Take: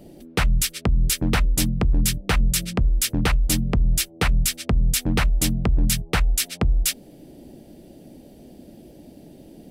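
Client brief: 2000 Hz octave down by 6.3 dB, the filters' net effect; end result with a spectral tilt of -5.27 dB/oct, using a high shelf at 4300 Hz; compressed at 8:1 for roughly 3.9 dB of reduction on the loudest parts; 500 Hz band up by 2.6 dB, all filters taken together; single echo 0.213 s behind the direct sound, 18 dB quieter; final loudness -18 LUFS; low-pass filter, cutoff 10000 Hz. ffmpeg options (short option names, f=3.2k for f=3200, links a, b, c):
-af "lowpass=10k,equalizer=f=500:t=o:g=3.5,equalizer=f=2k:t=o:g=-6.5,highshelf=f=4.3k:g=-8.5,acompressor=threshold=-18dB:ratio=8,aecho=1:1:213:0.126,volume=8dB"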